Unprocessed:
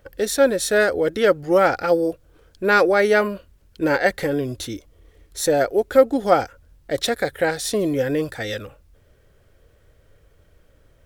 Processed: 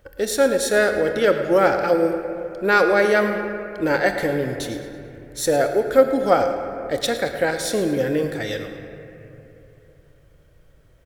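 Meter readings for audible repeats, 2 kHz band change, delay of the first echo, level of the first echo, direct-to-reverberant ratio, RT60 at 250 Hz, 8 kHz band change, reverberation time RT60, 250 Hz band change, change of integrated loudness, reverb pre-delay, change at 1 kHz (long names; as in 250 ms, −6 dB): 1, 0.0 dB, 110 ms, −14.0 dB, 5.5 dB, 3.2 s, −0.5 dB, 2.9 s, 0.0 dB, −0.5 dB, 24 ms, 0.0 dB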